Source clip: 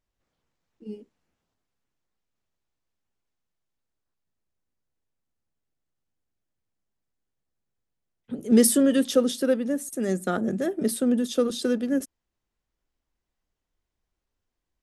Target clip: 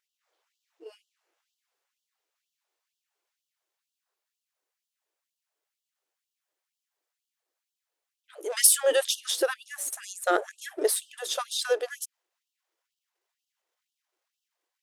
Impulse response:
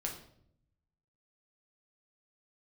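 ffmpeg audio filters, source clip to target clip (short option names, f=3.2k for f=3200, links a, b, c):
-af "aeval=exprs='if(lt(val(0),0),0.708*val(0),val(0))':c=same,afftfilt=real='re*gte(b*sr/1024,300*pow(2800/300,0.5+0.5*sin(2*PI*2.1*pts/sr)))':imag='im*gte(b*sr/1024,300*pow(2800/300,0.5+0.5*sin(2*PI*2.1*pts/sr)))':win_size=1024:overlap=0.75,volume=6dB"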